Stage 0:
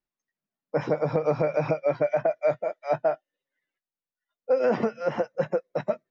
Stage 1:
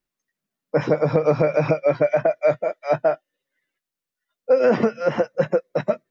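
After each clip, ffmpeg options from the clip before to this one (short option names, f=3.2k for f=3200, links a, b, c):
-af "equalizer=f=820:t=o:w=0.68:g=-4.5,volume=7dB"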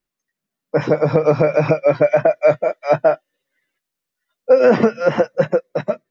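-af "dynaudnorm=f=110:g=13:m=5dB,volume=1dB"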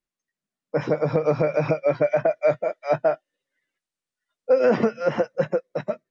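-af "aresample=22050,aresample=44100,volume=-6.5dB"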